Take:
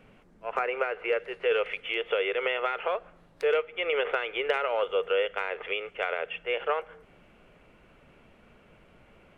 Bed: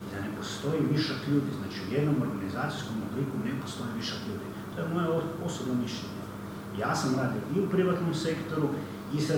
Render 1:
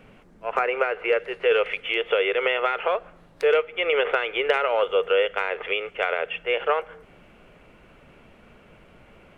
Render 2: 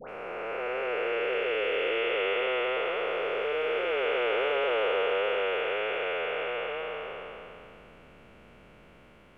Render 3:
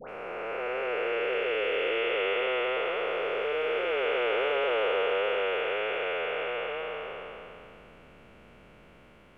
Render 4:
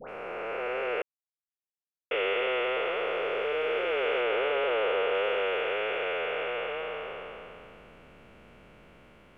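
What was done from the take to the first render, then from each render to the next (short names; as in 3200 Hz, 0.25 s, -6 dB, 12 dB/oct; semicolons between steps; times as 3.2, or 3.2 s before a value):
gain +5.5 dB
time blur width 1.1 s; dispersion highs, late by 91 ms, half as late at 1400 Hz
nothing audible
1.02–2.11 mute; 4.21–5.14 air absorption 73 m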